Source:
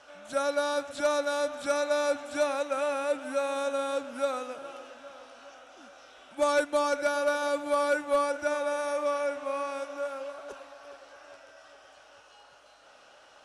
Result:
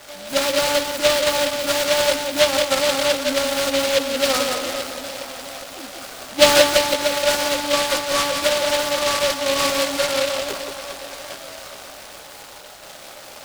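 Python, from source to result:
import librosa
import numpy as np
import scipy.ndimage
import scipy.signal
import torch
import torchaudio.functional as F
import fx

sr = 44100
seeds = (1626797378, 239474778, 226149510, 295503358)

y = fx.rider(x, sr, range_db=10, speed_s=0.5)
y = fx.doubler(y, sr, ms=15.0, db=-6.5)
y = y + 10.0 ** (-5.5 / 20.0) * np.pad(y, (int(176 * sr / 1000.0), 0))[:len(y)]
y = fx.noise_mod_delay(y, sr, seeds[0], noise_hz=3000.0, depth_ms=0.15)
y = y * librosa.db_to_amplitude(8.0)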